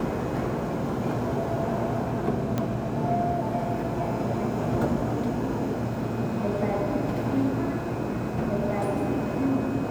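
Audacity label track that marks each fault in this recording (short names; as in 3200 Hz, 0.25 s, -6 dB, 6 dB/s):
2.580000	2.580000	pop -14 dBFS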